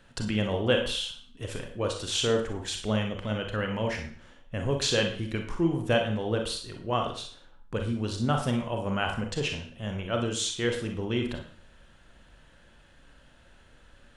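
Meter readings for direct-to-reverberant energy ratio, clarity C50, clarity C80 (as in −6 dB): 3.0 dB, 6.5 dB, 11.0 dB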